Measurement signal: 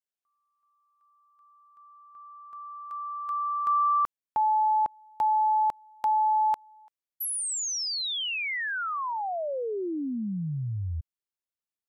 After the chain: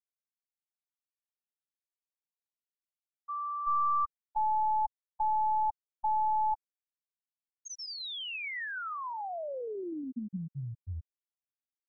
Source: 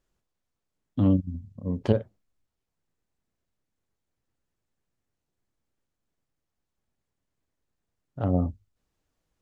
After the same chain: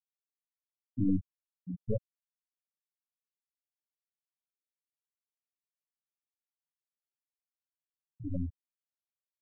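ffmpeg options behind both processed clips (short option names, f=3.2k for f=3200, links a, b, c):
-af "bandreject=f=50:t=h:w=6,bandreject=f=100:t=h:w=6,bandreject=f=150:t=h:w=6,bandreject=f=200:t=h:w=6,bandreject=f=250:t=h:w=6,aeval=exprs='(tanh(12.6*val(0)+0.7)-tanh(0.7))/12.6':c=same,afftfilt=real='re*gte(hypot(re,im),0.2)':imag='im*gte(hypot(re,im),0.2)':win_size=1024:overlap=0.75"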